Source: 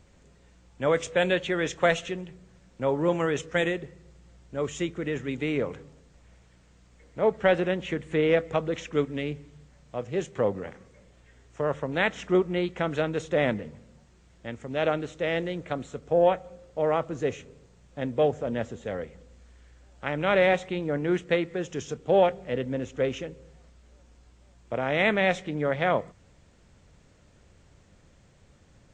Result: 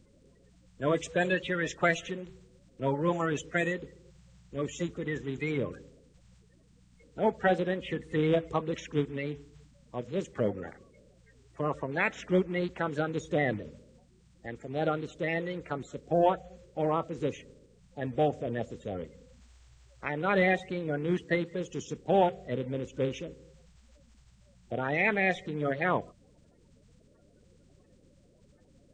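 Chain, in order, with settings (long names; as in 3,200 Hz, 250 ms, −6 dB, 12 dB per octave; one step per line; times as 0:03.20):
spectral magnitudes quantised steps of 30 dB
level −3 dB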